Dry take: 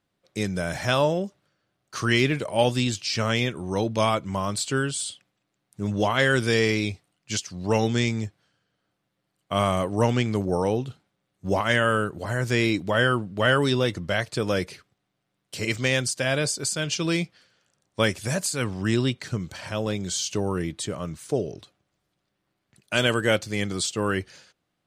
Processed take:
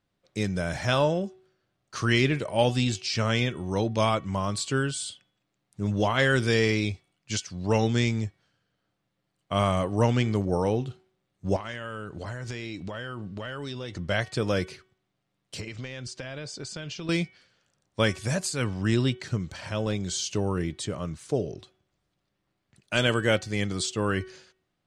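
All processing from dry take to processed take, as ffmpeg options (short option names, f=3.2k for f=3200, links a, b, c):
-filter_complex "[0:a]asettb=1/sr,asplit=3[a][b][c];[a]atrim=end=11.564[d];[b]atrim=start=11.56:end=13.99,asetpts=PTS-STARTPTS,afade=t=in:d=0.004:c=qsin,afade=t=out:st=2.426:d=0.004:c=qsin,lowpass=6.5k,acompressor=threshold=-30dB:ratio=10:attack=3.2:release=140:knee=1:detection=peak,highshelf=f=3.9k:g=7[e];[c]atrim=start=13.986[f];[d][e]acrossfade=d=0.004:c1=hsin:c2=qsin[g];[g][f]acrossfade=d=0.004:c1=qsin:c2=hsin,asettb=1/sr,asplit=3[h][i][j];[h]atrim=end=15.604[k];[i]atrim=start=15.6:end=17.09,asetpts=PTS-STARTPTS,afade=t=in:d=0.004:c=qsin,afade=t=out:st=1.486:d=0.004:c=qsin,lowpass=5.4k,acompressor=threshold=-31dB:ratio=16:attack=3.2:release=140:knee=1:detection=peak[l];[j]atrim=start=17.086[m];[k][l]acrossfade=d=0.004:c1=hsin:c2=qsin[n];[n][m]acrossfade=d=0.004:c1=qsin:c2=hsin,lowpass=8.8k,lowshelf=f=74:g=9,bandreject=f=374.9:t=h:w=4,bandreject=f=749.8:t=h:w=4,bandreject=f=1.1247k:t=h:w=4,bandreject=f=1.4996k:t=h:w=4,bandreject=f=1.8745k:t=h:w=4,bandreject=f=2.2494k:t=h:w=4,bandreject=f=2.6243k:t=h:w=4,bandreject=f=2.9992k:t=h:w=4,bandreject=f=3.3741k:t=h:w=4,volume=-2dB"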